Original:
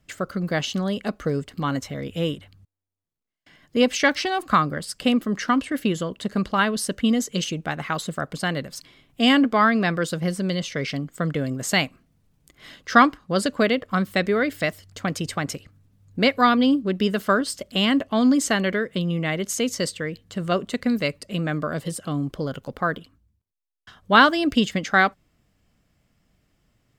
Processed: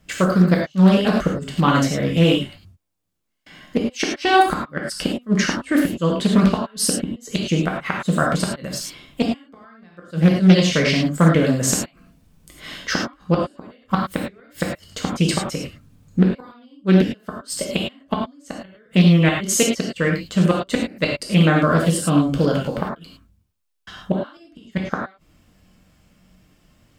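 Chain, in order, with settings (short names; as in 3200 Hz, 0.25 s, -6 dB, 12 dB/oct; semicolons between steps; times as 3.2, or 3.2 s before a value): flipped gate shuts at -14 dBFS, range -39 dB; non-linear reverb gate 0.13 s flat, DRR -1.5 dB; Doppler distortion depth 0.3 ms; gain +6.5 dB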